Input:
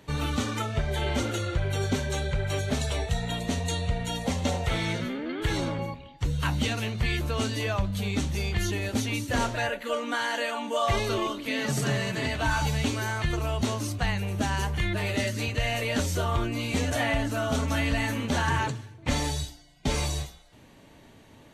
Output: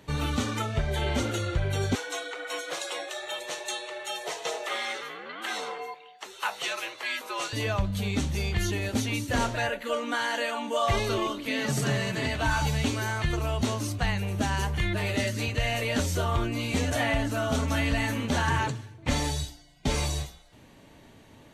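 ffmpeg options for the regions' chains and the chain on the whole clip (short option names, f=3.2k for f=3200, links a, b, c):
-filter_complex "[0:a]asettb=1/sr,asplit=3[a][b][c];[a]atrim=end=1.954[d];[b]atrim=start=1.95:end=7.53,asetpts=PTS-STARTPTS,afade=t=in:d=0.004:c=qsin,afade=t=out:st=5.576:d=0.004:c=qsin,highpass=f=570:w=0.5412,highpass=f=570:w=1.3066,afreqshift=-96,equalizer=f=1.1k:w=2:g=3.5[e];[c]atrim=start=7.526[f];[d][e]acrossfade=d=0.004:c1=hsin:c2=qsin[g];[g][f]acrossfade=d=0.004:c1=qsin:c2=hsin"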